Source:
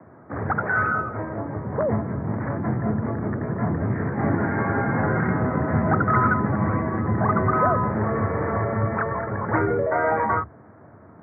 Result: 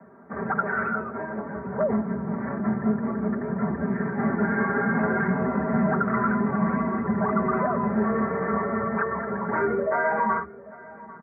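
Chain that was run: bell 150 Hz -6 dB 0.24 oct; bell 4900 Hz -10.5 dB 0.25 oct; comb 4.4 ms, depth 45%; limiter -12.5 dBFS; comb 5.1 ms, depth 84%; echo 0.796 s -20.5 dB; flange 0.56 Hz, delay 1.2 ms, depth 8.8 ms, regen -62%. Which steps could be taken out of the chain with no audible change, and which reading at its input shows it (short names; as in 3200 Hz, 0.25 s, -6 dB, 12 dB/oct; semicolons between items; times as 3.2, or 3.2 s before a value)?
bell 4900 Hz: input band ends at 2200 Hz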